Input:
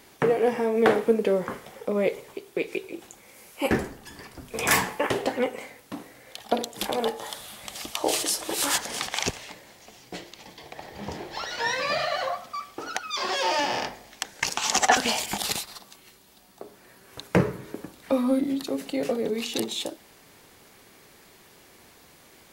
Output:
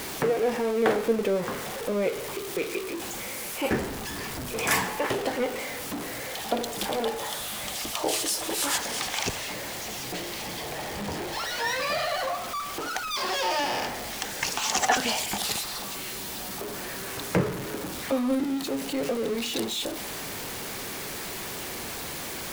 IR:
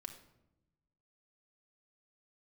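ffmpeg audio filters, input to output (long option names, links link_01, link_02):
-af "aeval=exprs='val(0)+0.5*0.0531*sgn(val(0))':channel_layout=same,volume=-4.5dB"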